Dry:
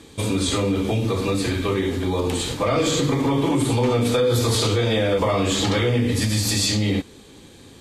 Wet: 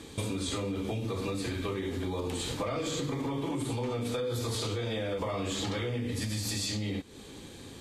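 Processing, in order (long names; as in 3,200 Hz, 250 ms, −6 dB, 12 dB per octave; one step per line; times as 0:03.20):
downward compressor 6 to 1, threshold −30 dBFS, peak gain reduction 13 dB
level −1 dB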